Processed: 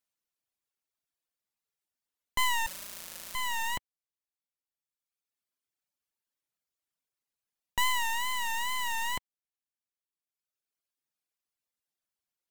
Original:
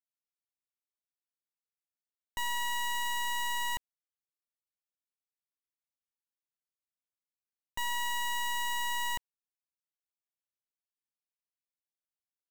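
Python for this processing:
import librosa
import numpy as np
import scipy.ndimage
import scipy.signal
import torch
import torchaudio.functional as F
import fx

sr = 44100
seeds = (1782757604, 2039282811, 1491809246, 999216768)

y = fx.dereverb_blind(x, sr, rt60_s=1.6)
y = fx.quant_dither(y, sr, seeds[0], bits=6, dither='none', at=(2.66, 3.35))
y = fx.wow_flutter(y, sr, seeds[1], rate_hz=2.1, depth_cents=100.0)
y = y * 10.0 ** (7.5 / 20.0)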